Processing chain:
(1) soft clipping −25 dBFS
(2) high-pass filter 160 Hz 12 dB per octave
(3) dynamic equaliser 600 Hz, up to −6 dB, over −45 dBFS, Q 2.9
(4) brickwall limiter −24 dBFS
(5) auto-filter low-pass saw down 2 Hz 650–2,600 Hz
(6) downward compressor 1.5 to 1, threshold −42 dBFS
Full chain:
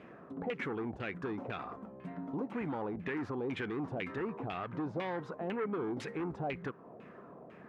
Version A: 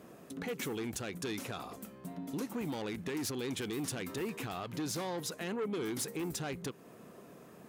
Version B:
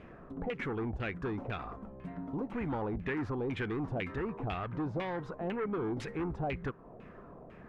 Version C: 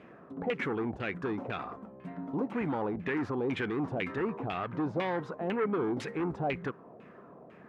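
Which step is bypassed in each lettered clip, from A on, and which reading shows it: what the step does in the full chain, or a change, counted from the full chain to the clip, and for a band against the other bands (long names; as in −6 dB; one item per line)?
5, 4 kHz band +10.5 dB
2, 125 Hz band +4.0 dB
6, average gain reduction 3.5 dB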